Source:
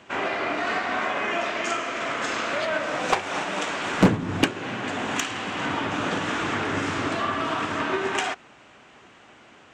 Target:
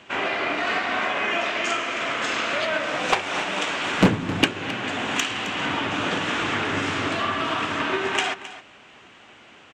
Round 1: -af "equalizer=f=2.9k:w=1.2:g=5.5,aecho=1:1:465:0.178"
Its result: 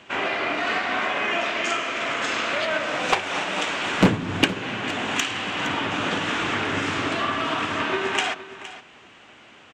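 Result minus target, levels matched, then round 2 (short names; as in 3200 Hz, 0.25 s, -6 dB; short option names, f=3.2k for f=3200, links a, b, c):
echo 0.2 s late
-af "equalizer=f=2.9k:w=1.2:g=5.5,aecho=1:1:265:0.178"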